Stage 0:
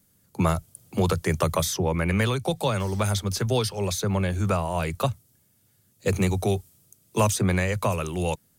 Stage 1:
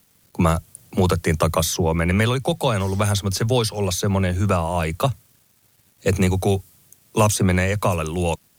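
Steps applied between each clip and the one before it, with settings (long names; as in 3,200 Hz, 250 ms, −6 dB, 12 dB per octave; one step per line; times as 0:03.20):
bit reduction 10 bits
level +4.5 dB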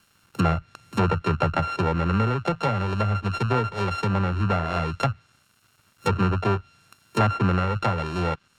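samples sorted by size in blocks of 32 samples
treble cut that deepens with the level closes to 2,000 Hz, closed at −16 dBFS
level −3 dB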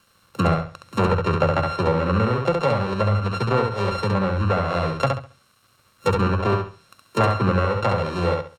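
hollow resonant body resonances 530/1,100/3,900 Hz, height 9 dB, ringing for 30 ms
on a send: repeating echo 68 ms, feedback 27%, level −4 dB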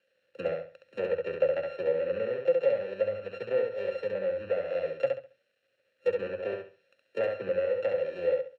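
formant filter e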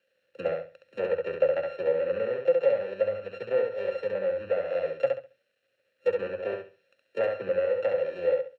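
dynamic equaliser 980 Hz, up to +5 dB, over −38 dBFS, Q 0.86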